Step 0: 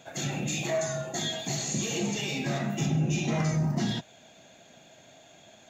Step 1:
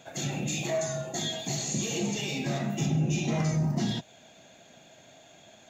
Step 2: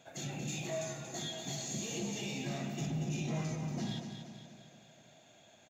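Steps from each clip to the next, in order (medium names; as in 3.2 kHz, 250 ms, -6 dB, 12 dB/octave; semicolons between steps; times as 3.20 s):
dynamic bell 1.5 kHz, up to -4 dB, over -48 dBFS, Q 1.2
saturation -21.5 dBFS, distortion -20 dB; on a send: feedback delay 233 ms, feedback 52%, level -7.5 dB; on the sum: trim -8 dB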